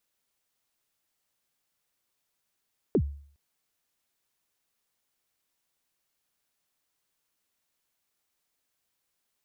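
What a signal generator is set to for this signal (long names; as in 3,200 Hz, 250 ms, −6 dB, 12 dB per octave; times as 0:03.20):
synth kick length 0.41 s, from 480 Hz, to 71 Hz, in 68 ms, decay 0.52 s, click off, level −17 dB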